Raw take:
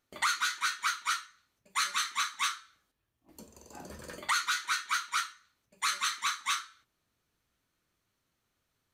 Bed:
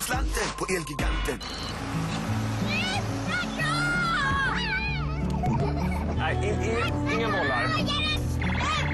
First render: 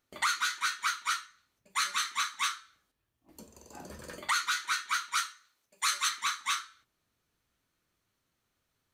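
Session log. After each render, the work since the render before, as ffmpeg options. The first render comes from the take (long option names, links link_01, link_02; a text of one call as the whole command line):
ffmpeg -i in.wav -filter_complex "[0:a]asettb=1/sr,asplit=3[link_01][link_02][link_03];[link_01]atrim=end=5.154[link_04];[link_02]atrim=start=5.15:end=6.09,asetpts=PTS-STARTPTS,afade=type=in:duration=0.004:curve=qsin,afade=type=out:start_time=0.936:duration=0.004:curve=qsin,bass=frequency=250:gain=-12,treble=frequency=4000:gain=4[link_05];[link_03]atrim=start=6.086[link_06];[link_04][link_05]acrossfade=duration=0.004:curve1=hsin:curve2=qsin[link_07];[link_07][link_06]acrossfade=duration=0.004:curve1=qsin:curve2=hsin" out.wav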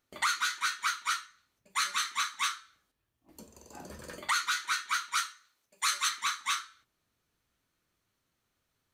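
ffmpeg -i in.wav -af anull out.wav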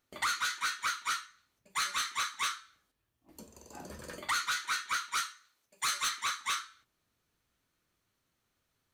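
ffmpeg -i in.wav -af "asoftclip=type=tanh:threshold=-24.5dB" out.wav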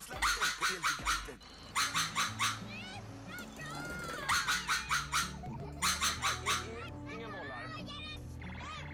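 ffmpeg -i in.wav -i bed.wav -filter_complex "[1:a]volume=-18dB[link_01];[0:a][link_01]amix=inputs=2:normalize=0" out.wav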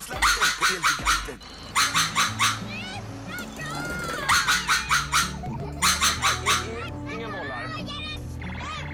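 ffmpeg -i in.wav -af "volume=11dB" out.wav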